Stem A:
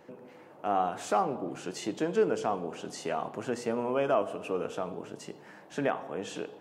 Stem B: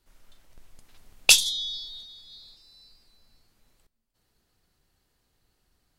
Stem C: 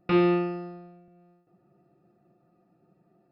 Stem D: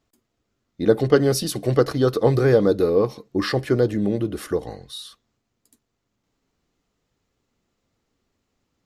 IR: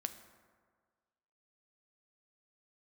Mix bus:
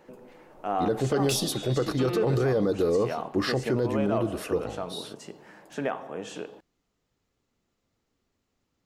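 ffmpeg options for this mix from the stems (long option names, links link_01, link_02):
-filter_complex "[0:a]volume=-2dB,asplit=2[link_01][link_02];[link_02]volume=-9.5dB[link_03];[1:a]asoftclip=type=hard:threshold=-6.5dB,volume=-14dB,asplit=2[link_04][link_05];[link_05]volume=-5dB[link_06];[2:a]adelay=1900,volume=-9.5dB[link_07];[3:a]volume=-3.5dB,asplit=2[link_08][link_09];[link_09]apad=whole_len=291238[link_10];[link_01][link_10]sidechaincompress=threshold=-25dB:ratio=8:attack=40:release=105[link_11];[4:a]atrim=start_sample=2205[link_12];[link_03][link_06]amix=inputs=2:normalize=0[link_13];[link_13][link_12]afir=irnorm=-1:irlink=0[link_14];[link_11][link_04][link_07][link_08][link_14]amix=inputs=5:normalize=0,alimiter=limit=-16.5dB:level=0:latency=1:release=24"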